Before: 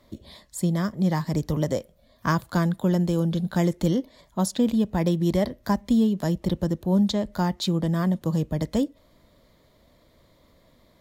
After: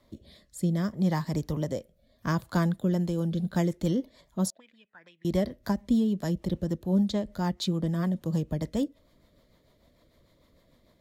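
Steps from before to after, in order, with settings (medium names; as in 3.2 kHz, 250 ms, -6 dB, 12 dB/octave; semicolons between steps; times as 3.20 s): rotary cabinet horn 0.65 Hz, later 6.7 Hz, at 2.52 s; 4.50–5.25 s: auto-wah 590–2500 Hz, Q 7.8, up, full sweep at -19 dBFS; trim -2.5 dB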